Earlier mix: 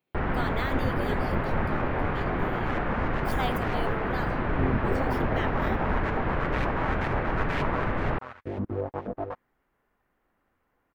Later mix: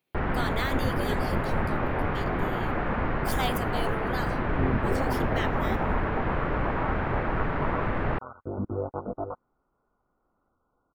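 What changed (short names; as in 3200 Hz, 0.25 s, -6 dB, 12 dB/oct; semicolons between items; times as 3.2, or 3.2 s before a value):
speech: add bell 9800 Hz +10 dB 2.3 oct; second sound: add brick-wall FIR low-pass 1500 Hz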